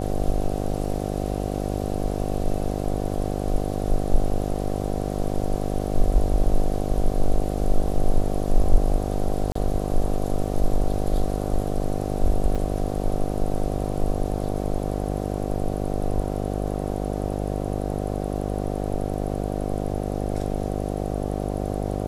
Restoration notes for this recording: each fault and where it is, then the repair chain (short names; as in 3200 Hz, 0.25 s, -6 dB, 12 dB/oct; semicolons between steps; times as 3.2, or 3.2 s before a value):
buzz 50 Hz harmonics 15 -27 dBFS
9.52–9.55 gap 34 ms
12.55–12.56 gap 5.8 ms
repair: de-hum 50 Hz, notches 15; interpolate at 9.52, 34 ms; interpolate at 12.55, 5.8 ms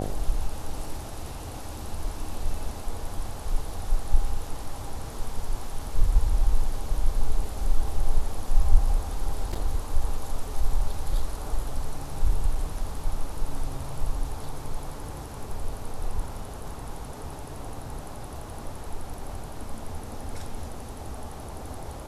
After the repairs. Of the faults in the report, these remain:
none